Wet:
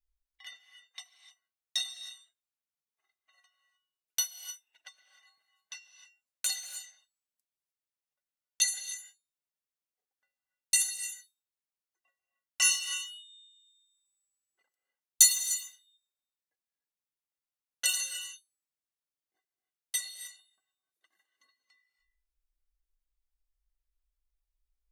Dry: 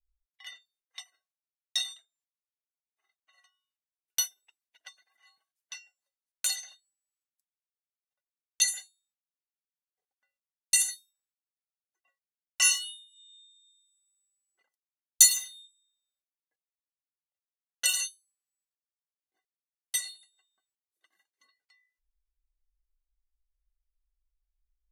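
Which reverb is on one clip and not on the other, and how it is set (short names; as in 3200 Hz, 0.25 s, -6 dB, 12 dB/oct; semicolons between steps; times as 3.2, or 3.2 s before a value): non-linear reverb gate 0.33 s rising, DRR 9.5 dB; gain -2 dB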